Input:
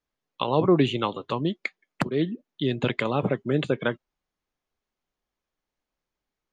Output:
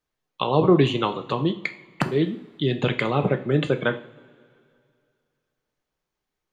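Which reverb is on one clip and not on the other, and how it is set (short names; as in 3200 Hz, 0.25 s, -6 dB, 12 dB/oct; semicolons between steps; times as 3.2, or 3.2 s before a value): two-slope reverb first 0.43 s, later 2.5 s, from -21 dB, DRR 7 dB; gain +2 dB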